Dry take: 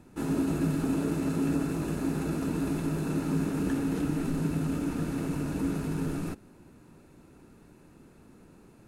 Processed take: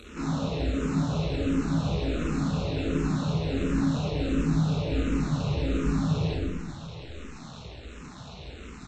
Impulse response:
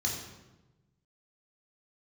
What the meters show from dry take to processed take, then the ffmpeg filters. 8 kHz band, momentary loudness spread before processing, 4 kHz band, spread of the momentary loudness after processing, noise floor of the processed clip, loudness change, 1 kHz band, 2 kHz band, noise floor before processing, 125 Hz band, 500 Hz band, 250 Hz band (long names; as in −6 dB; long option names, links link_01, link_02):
−1.0 dB, 4 LU, +10.0 dB, 17 LU, −44 dBFS, +2.5 dB, +3.5 dB, +3.5 dB, −56 dBFS, +5.0 dB, +3.0 dB, +1.0 dB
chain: -filter_complex "[0:a]highpass=frequency=40:width=0.5412,highpass=frequency=40:width=1.3066,asplit=2[link_01][link_02];[link_02]acompressor=threshold=-40dB:ratio=6,volume=-2dB[link_03];[link_01][link_03]amix=inputs=2:normalize=0,alimiter=limit=-24dB:level=0:latency=1:release=35,acompressor=mode=upward:threshold=-46dB:ratio=2.5,aresample=16000,acrusher=bits=5:dc=4:mix=0:aa=0.000001,aresample=44100[link_04];[1:a]atrim=start_sample=2205,asetrate=26460,aresample=44100[link_05];[link_04][link_05]afir=irnorm=-1:irlink=0,asplit=2[link_06][link_07];[link_07]afreqshift=-1.4[link_08];[link_06][link_08]amix=inputs=2:normalize=1"